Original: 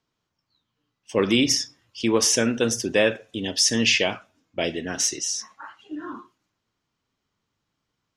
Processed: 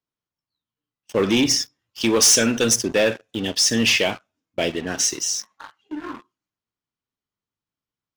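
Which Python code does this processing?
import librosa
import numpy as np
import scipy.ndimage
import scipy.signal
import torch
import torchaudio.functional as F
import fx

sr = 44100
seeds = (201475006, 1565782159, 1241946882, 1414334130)

y = fx.high_shelf(x, sr, hz=2700.0, db=10.0, at=(2.01, 2.76))
y = fx.leveller(y, sr, passes=3)
y = F.gain(torch.from_numpy(y), -8.0).numpy()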